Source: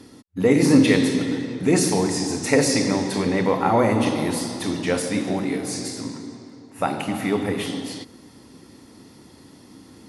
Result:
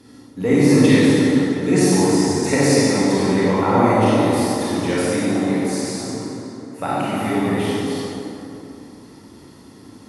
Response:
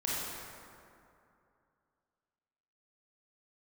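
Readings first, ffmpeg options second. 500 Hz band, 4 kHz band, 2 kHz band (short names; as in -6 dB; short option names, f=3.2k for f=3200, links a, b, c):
+4.0 dB, +2.0 dB, +2.5 dB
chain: -filter_complex "[1:a]atrim=start_sample=2205,asetrate=40131,aresample=44100[a];[0:a][a]afir=irnorm=-1:irlink=0,volume=-3.5dB"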